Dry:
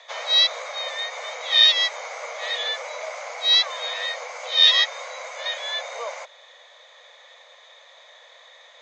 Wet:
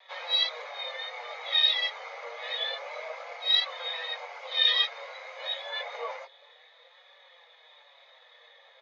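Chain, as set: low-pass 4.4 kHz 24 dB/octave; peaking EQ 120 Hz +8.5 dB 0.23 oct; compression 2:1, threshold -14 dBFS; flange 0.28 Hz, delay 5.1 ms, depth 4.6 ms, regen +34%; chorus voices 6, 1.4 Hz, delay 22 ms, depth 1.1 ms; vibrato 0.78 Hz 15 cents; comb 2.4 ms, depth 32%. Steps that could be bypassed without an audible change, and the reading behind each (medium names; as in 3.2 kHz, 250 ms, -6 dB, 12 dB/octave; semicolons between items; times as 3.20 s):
peaking EQ 120 Hz: input has nothing below 430 Hz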